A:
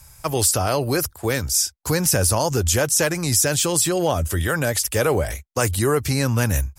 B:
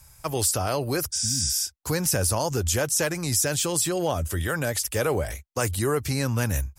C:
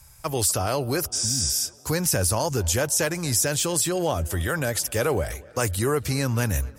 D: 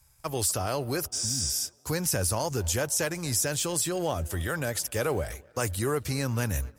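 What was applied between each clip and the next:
healed spectral selection 0:01.15–0:01.59, 300–10,000 Hz after; level −5 dB
tape delay 243 ms, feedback 72%, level −22 dB, low-pass 3,500 Hz; level +1 dB
mu-law and A-law mismatch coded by A; level −4 dB

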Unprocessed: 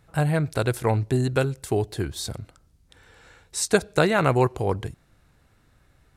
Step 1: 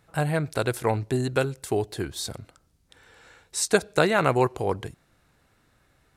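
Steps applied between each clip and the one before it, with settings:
low-shelf EQ 140 Hz −9 dB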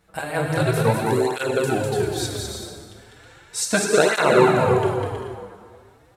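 bouncing-ball delay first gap 200 ms, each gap 0.6×, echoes 5
dense smooth reverb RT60 2 s, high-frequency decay 0.7×, DRR 1.5 dB
through-zero flanger with one copy inverted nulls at 0.36 Hz, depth 7.9 ms
level +4 dB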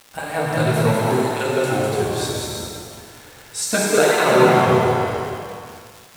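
noise gate with hold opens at −39 dBFS
surface crackle 250 per second −30 dBFS
reverb with rising layers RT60 1.4 s, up +7 semitones, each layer −8 dB, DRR 0.5 dB
level −1 dB

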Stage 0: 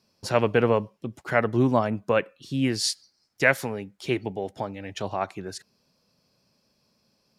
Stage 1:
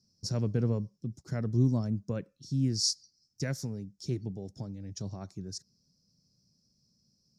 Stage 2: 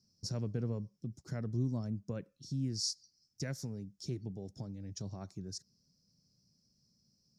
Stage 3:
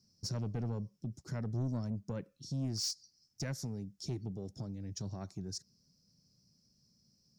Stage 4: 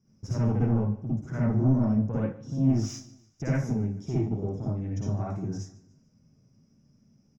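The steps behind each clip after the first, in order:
drawn EQ curve 160 Hz 0 dB, 820 Hz −24 dB, 1,500 Hz −23 dB, 2,900 Hz −28 dB, 5,500 Hz +2 dB, 10,000 Hz −14 dB; level +1 dB
downward compressor 1.5 to 1, threshold −39 dBFS, peak gain reduction 7 dB; level −2 dB
soft clipping −32.5 dBFS, distortion −13 dB; level +2.5 dB
moving average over 10 samples; repeating echo 146 ms, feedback 45%, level −19.5 dB; convolution reverb RT60 0.30 s, pre-delay 50 ms, DRR −7 dB; level +4.5 dB

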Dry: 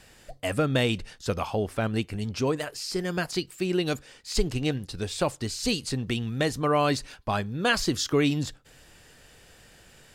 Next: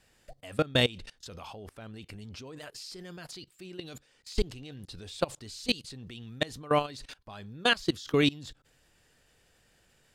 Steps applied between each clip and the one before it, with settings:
dynamic equaliser 3,600 Hz, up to +7 dB, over −47 dBFS, Q 1.9
output level in coarse steps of 22 dB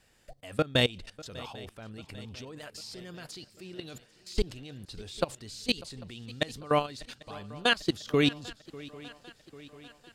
feedback echo with a long and a short gap by turns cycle 795 ms, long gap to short 3 to 1, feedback 55%, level −20 dB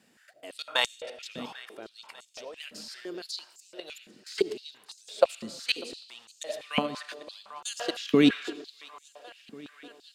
on a send at −12.5 dB: convolution reverb RT60 1.2 s, pre-delay 35 ms
on the sum: high-pass on a step sequencer 5.9 Hz 220–6,800 Hz

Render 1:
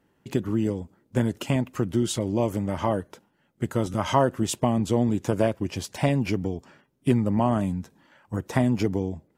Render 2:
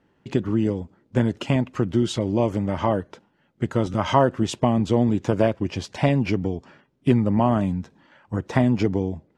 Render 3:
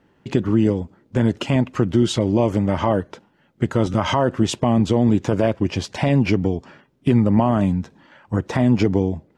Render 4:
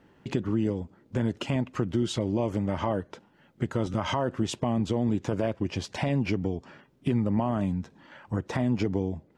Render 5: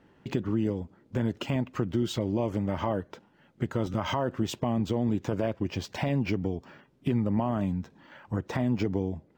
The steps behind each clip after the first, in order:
low-pass filter 5,000 Hz 12 dB per octave; level +3 dB
brickwall limiter −12 dBFS, peak gain reduction 9.5 dB; level +5 dB
downward compressor 1.5 to 1, threshold −40 dBFS, peak gain reduction 10 dB
linearly interpolated sample-rate reduction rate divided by 2×; level −1 dB

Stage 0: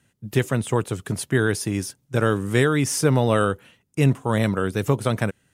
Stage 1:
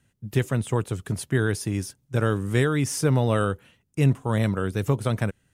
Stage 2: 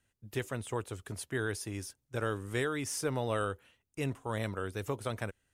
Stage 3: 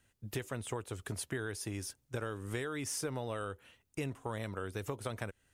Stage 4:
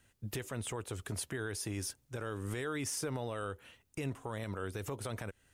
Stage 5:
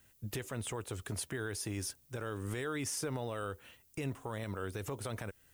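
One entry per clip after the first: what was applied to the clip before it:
low-shelf EQ 90 Hz +11.5 dB; level −4.5 dB
parametric band 160 Hz −12 dB 1.3 octaves; level −7 dB
downward compressor, threshold −40 dBFS, peak gain reduction 12.5 dB; level +5 dB
brickwall limiter −31.5 dBFS, peak gain reduction 9.5 dB; level +3.5 dB
background noise violet −68 dBFS

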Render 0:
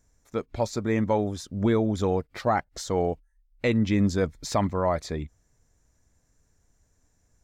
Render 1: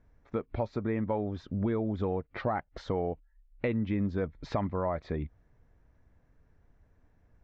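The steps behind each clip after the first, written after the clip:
Bessel low-pass filter 2,100 Hz, order 4
downward compressor 3 to 1, threshold −34 dBFS, peak gain reduction 11.5 dB
level +3.5 dB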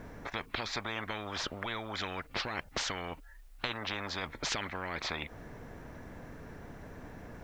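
every bin compressed towards the loudest bin 10 to 1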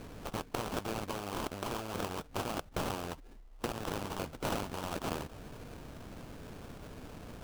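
sample-rate reduction 2,000 Hz, jitter 20%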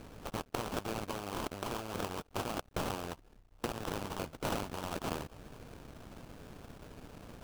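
dead-zone distortion −54.5 dBFS

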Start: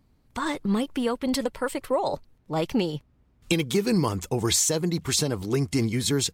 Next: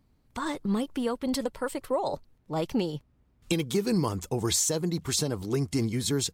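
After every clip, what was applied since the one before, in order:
dynamic equaliser 2,300 Hz, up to −4 dB, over −46 dBFS, Q 1.3
level −3 dB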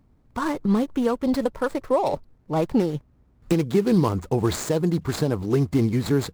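running median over 15 samples
level +7 dB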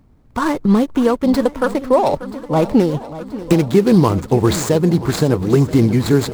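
feedback echo with a long and a short gap by turns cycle 980 ms, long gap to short 1.5 to 1, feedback 56%, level −15.5 dB
level +7.5 dB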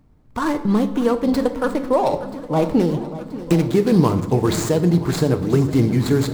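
rectangular room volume 390 cubic metres, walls mixed, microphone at 0.46 metres
level −4 dB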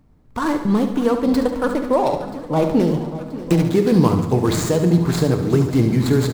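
repeating echo 71 ms, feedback 55%, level −10 dB

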